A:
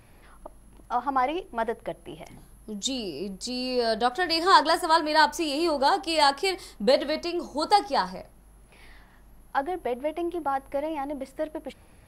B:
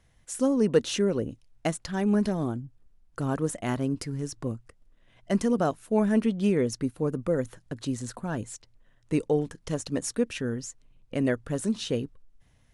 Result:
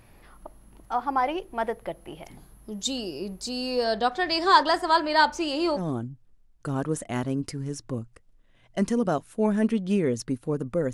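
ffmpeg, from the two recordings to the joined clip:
ffmpeg -i cue0.wav -i cue1.wav -filter_complex "[0:a]asettb=1/sr,asplit=3[link_01][link_02][link_03];[link_01]atrim=end=3.844[link_04];[link_02]atrim=start=3.84:end=5.81,asetpts=PTS-STARTPTS,afade=type=in:duration=0.004:curve=qsin,afade=type=out:start_time=1.966:duration=0.004:curve=qsin,lowpass=6200[link_05];[link_03]atrim=start=5.806[link_06];[link_04][link_05]acrossfade=duration=0.004:curve1=hsin:curve2=qsin[link_07];[link_07][link_06]acrossfade=duration=0.004:curve1=qsin:curve2=hsin,apad=whole_dur=10.93,atrim=end=10.93,atrim=end=5.81,asetpts=PTS-STARTPTS[link_08];[1:a]atrim=start=2.28:end=7.46,asetpts=PTS-STARTPTS[link_09];[link_08][link_09]acrossfade=duration=0.06:curve1=tri:curve2=tri" out.wav

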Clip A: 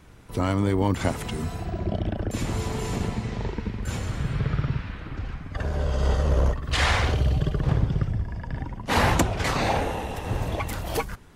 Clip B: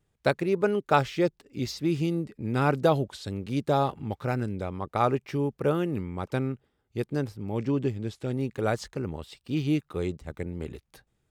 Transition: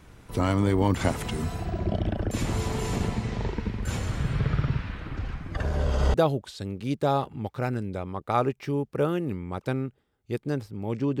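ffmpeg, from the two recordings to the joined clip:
ffmpeg -i cue0.wav -i cue1.wav -filter_complex "[1:a]asplit=2[link_01][link_02];[0:a]apad=whole_dur=11.2,atrim=end=11.2,atrim=end=6.142[link_03];[link_02]atrim=start=2.798:end=7.86[link_04];[link_01]atrim=start=2.14:end=2.8,asetpts=PTS-STARTPTS,volume=-16.5dB,afade=type=in:duration=0.004:curve=hsin,afade=type=out:start_time=0.656:duration=0.004:curve=hsin,adelay=5480[link_05];[link_03][link_04]acrossfade=duration=0.004:curve1=hsin:curve2=hsin[link_06];[link_06][link_05]amix=inputs=2:normalize=0" out.wav

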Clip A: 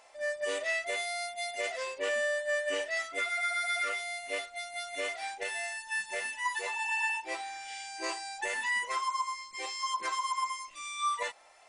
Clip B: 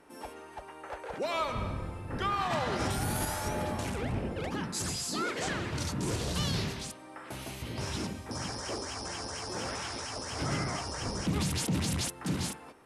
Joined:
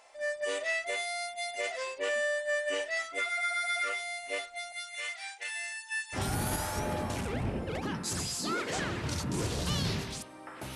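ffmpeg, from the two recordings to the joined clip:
ffmpeg -i cue0.wav -i cue1.wav -filter_complex "[0:a]asettb=1/sr,asplit=3[link_01][link_02][link_03];[link_01]atrim=end=4.724[link_04];[link_02]atrim=start=4.72:end=6.2,asetpts=PTS-STARTPTS,afade=type=in:duration=0.004:curve=qsin,afade=type=out:start_time=1.476:duration=0.004:curve=qsin,highpass=1300[link_05];[link_03]atrim=start=6.196[link_06];[link_04][link_05]acrossfade=duration=0.004:curve1=hsin:curve2=qsin[link_07];[link_07][link_06]acrossfade=duration=0.004:curve1=qsin:curve2=hsin,apad=whole_dur=10.75,atrim=end=10.75,atrim=end=6.2,asetpts=PTS-STARTPTS[link_08];[1:a]atrim=start=2.81:end=7.44,asetpts=PTS-STARTPTS[link_09];[link_08][link_09]acrossfade=duration=0.08:curve1=tri:curve2=tri" out.wav

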